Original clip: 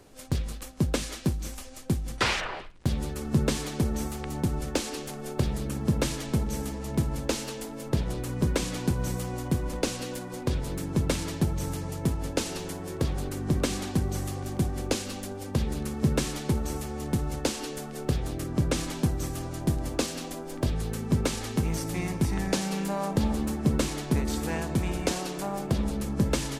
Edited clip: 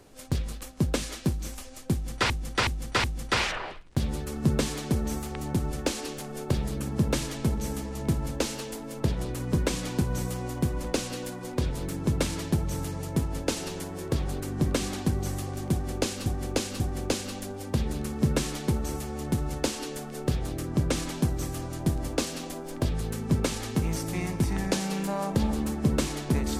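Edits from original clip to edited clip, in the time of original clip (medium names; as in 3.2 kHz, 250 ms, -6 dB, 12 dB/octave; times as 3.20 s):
1.93–2.30 s: loop, 4 plays
14.61–15.15 s: loop, 3 plays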